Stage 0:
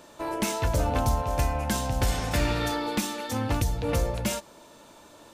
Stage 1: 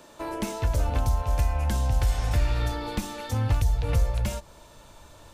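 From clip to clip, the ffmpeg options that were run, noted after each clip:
-filter_complex "[0:a]asubboost=boost=10.5:cutoff=84,acrossover=split=480|1100[a][b][c];[a]acompressor=threshold=-21dB:ratio=4[d];[b]acompressor=threshold=-38dB:ratio=4[e];[c]acompressor=threshold=-38dB:ratio=4[f];[d][e][f]amix=inputs=3:normalize=0"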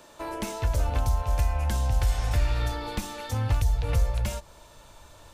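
-af "equalizer=f=230:w=0.73:g=-4"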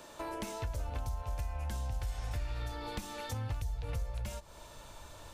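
-af "acompressor=threshold=-40dB:ratio=2.5"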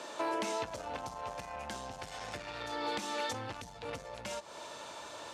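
-af "asoftclip=type=tanh:threshold=-32.5dB,highpass=290,lowpass=7.1k,volume=8dB"

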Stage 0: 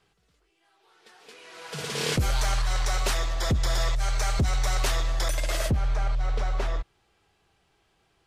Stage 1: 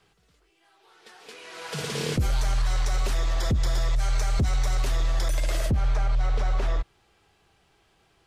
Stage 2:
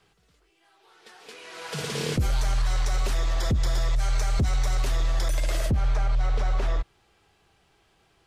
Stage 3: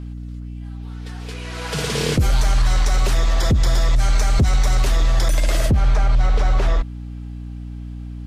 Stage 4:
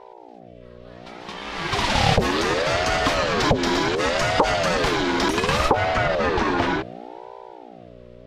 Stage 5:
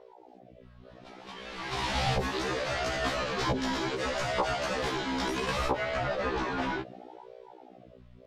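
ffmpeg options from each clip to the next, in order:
-filter_complex "[0:a]acrossover=split=420[a][b];[b]acompressor=threshold=-35dB:ratio=6[c];[a][c]amix=inputs=2:normalize=0,alimiter=limit=-21.5dB:level=0:latency=1,volume=4dB"
-af anull
-af "aeval=exprs='val(0)+0.0141*(sin(2*PI*60*n/s)+sin(2*PI*2*60*n/s)/2+sin(2*PI*3*60*n/s)/3+sin(2*PI*4*60*n/s)/4+sin(2*PI*5*60*n/s)/5)':c=same,volume=7.5dB"
-filter_complex "[0:a]acrossover=split=190 5000:gain=0.141 1 0.158[a][b][c];[a][b][c]amix=inputs=3:normalize=0,dynaudnorm=f=220:g=13:m=11.5dB,aeval=exprs='val(0)*sin(2*PI*500*n/s+500*0.4/0.68*sin(2*PI*0.68*n/s))':c=same"
-af "afftfilt=real='re*1.73*eq(mod(b,3),0)':imag='im*1.73*eq(mod(b,3),0)':win_size=2048:overlap=0.75,volume=-7.5dB"

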